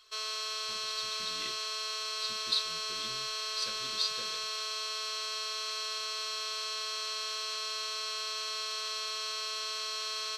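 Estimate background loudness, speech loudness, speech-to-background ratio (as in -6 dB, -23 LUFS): -34.0 LUFS, -37.0 LUFS, -3.0 dB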